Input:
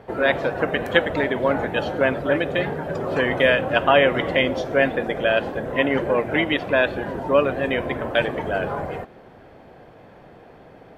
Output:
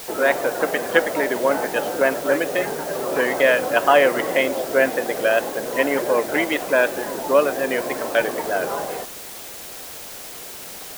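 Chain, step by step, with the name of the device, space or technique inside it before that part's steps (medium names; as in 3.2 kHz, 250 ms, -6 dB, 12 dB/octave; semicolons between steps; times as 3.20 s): wax cylinder (band-pass 300–2400 Hz; wow and flutter; white noise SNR 15 dB); trim +2 dB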